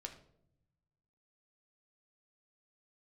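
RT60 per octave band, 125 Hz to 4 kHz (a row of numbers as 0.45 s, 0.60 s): 1.8 s, 1.3 s, 0.85 s, 0.60 s, 0.45 s, 0.40 s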